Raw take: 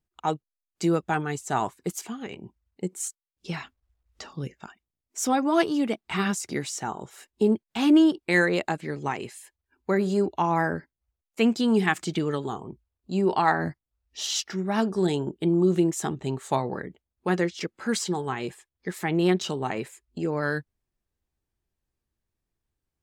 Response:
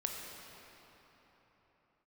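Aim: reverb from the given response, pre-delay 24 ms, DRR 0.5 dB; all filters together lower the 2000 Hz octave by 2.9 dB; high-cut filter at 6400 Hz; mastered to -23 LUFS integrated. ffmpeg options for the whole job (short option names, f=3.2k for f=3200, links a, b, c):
-filter_complex "[0:a]lowpass=6.4k,equalizer=f=2k:t=o:g=-3.5,asplit=2[a][b];[1:a]atrim=start_sample=2205,adelay=24[c];[b][c]afir=irnorm=-1:irlink=0,volume=-2.5dB[d];[a][d]amix=inputs=2:normalize=0,volume=1.5dB"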